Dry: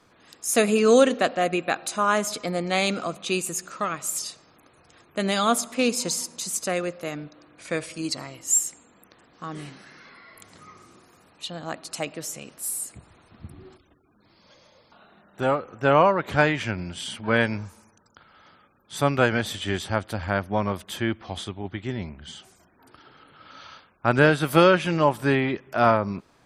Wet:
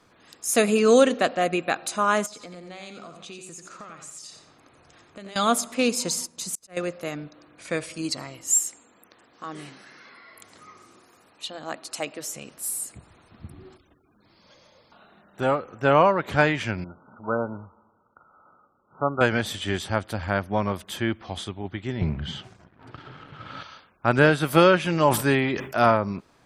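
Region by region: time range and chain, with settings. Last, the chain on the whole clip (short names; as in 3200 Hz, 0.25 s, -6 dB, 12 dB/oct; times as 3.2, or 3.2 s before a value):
2.26–5.36 LPF 8900 Hz 24 dB/oct + compressor 4:1, threshold -41 dBFS + feedback echo 89 ms, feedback 24%, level -6.5 dB
6.15–6.77 low shelf 110 Hz +10 dB + auto swell 0.293 s + upward expander, over -51 dBFS
8.54–12.35 low shelf 120 Hz -10.5 dB + notch 170 Hz, Q 5.6
16.84–19.21 brick-wall FIR low-pass 1500 Hz + low shelf 300 Hz -9.5 dB
22.01–23.63 bell 120 Hz +12.5 dB 1.1 oct + sample leveller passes 2 + LPF 3700 Hz
24.97–25.86 high shelf 5100 Hz +8.5 dB + sustainer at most 100 dB/s
whole clip: dry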